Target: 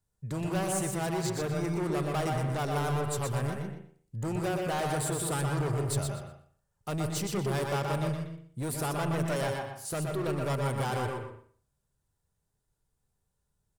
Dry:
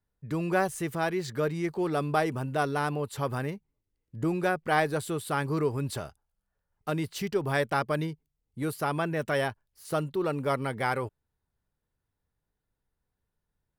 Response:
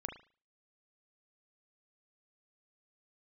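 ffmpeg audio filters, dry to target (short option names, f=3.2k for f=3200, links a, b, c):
-filter_complex "[0:a]equalizer=f=125:t=o:w=1:g=5,equalizer=f=250:t=o:w=1:g=-4,equalizer=f=2k:t=o:w=1:g=-5,equalizer=f=8k:t=o:w=1:g=10,asoftclip=type=hard:threshold=-30dB,aecho=1:1:121|242|363:0.531|0.101|0.0192,asplit=2[a][b];[1:a]atrim=start_sample=2205,lowpass=3.5k,adelay=126[c];[b][c]afir=irnorm=-1:irlink=0,volume=-3dB[d];[a][d]amix=inputs=2:normalize=0"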